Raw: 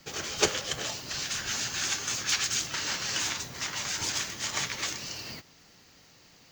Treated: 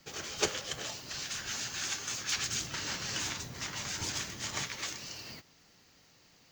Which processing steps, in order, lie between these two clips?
2.35–4.63 low shelf 340 Hz +7.5 dB; gain -5.5 dB

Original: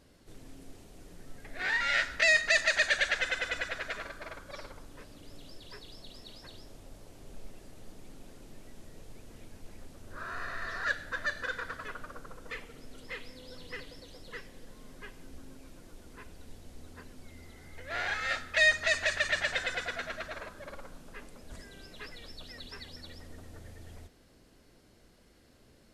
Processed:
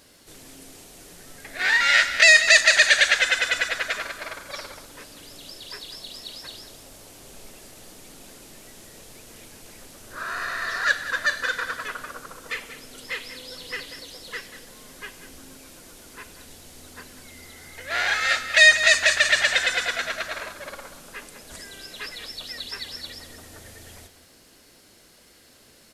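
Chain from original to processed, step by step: tilt +2.5 dB/oct; on a send: echo 0.191 s -12.5 dB; on the sum: gain +8 dB

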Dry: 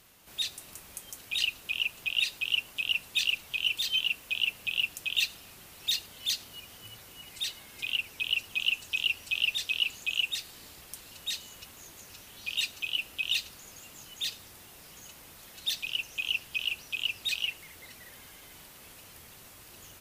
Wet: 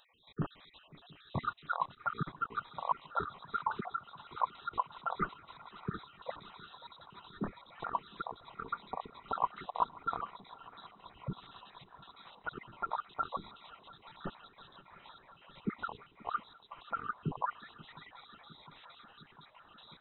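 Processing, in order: random spectral dropouts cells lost 60%; swung echo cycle 0.708 s, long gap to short 3:1, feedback 79%, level -22 dB; inverted band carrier 3900 Hz; gain -2 dB

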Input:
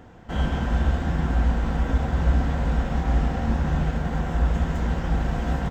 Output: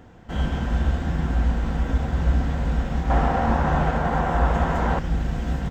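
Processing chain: bell 900 Hz -2 dB 2.2 oct, from 3.1 s +11.5 dB, from 4.99 s -5 dB

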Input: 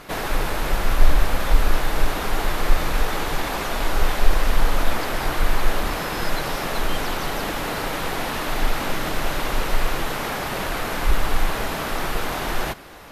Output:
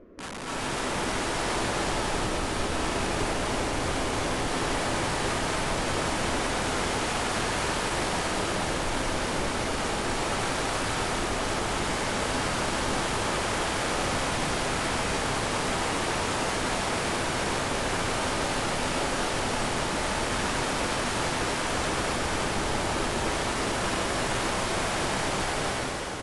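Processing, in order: rattling part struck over -27 dBFS, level -12 dBFS; LPF 1300 Hz 12 dB/oct; tilt +1.5 dB/oct; reverse; compressor 12:1, threshold -22 dBFS, peak gain reduction 9.5 dB; reverse; limiter -20.5 dBFS, peak gain reduction 5 dB; fixed phaser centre 670 Hz, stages 4; wrapped overs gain 31 dB; on a send: echo 0.289 s -10 dB; on the sum: plate-style reverb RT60 1.9 s, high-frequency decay 1×, pre-delay 0.11 s, DRR -8.5 dB; speed mistake 15 ips tape played at 7.5 ips; gain -1.5 dB

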